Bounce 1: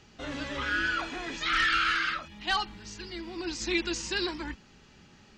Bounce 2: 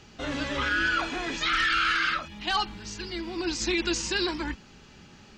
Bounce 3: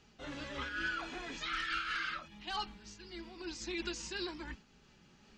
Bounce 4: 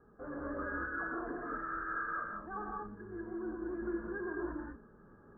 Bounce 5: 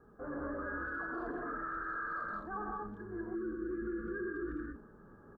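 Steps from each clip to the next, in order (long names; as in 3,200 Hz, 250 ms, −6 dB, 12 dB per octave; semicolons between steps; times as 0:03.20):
notch filter 1,900 Hz, Q 28; brickwall limiter −22 dBFS, peak gain reduction 6 dB; level +5 dB
flanger 1.5 Hz, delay 4.2 ms, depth 1.8 ms, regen −57%; amplitude modulation by smooth noise, depth 60%; level −5 dB
soft clipping −39 dBFS, distortion −10 dB; Chebyshev low-pass with heavy ripple 1,700 Hz, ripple 9 dB; reverb whose tail is shaped and stops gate 240 ms rising, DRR −1.5 dB; level +7.5 dB
gain on a spectral selection 0:03.35–0:04.76, 530–1,100 Hz −26 dB; far-end echo of a speakerphone 200 ms, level −23 dB; brickwall limiter −33 dBFS, peak gain reduction 6 dB; level +2 dB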